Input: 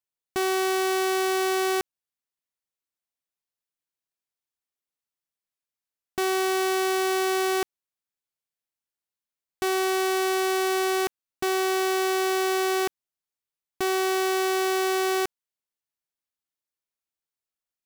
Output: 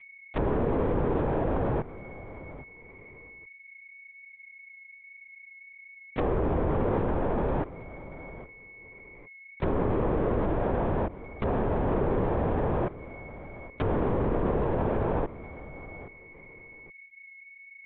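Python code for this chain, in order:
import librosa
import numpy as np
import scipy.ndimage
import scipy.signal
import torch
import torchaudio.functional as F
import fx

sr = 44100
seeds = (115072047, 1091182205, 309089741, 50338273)

p1 = x + 10.0 ** (-47.0 / 20.0) * np.sin(2.0 * np.pi * 2200.0 * np.arange(len(x)) / sr)
p2 = fx.env_lowpass_down(p1, sr, base_hz=910.0, full_db=-26.0)
p3 = p2 + fx.echo_feedback(p2, sr, ms=816, feedback_pct=16, wet_db=-16.0, dry=0)
y = fx.lpc_vocoder(p3, sr, seeds[0], excitation='whisper', order=10)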